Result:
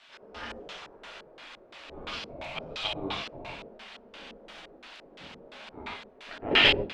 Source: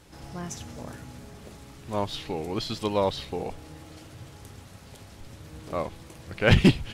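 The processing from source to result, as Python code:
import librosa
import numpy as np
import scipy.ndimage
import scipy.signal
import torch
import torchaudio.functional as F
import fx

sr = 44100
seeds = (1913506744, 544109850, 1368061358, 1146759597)

y = fx.spec_gate(x, sr, threshold_db=-15, keep='weak')
y = fx.rev_gated(y, sr, seeds[0], gate_ms=170, shape='flat', drr_db=-2.5)
y = fx.filter_lfo_lowpass(y, sr, shape='square', hz=2.9, low_hz=450.0, high_hz=3200.0, q=1.9)
y = F.gain(torch.from_numpy(y), 1.5).numpy()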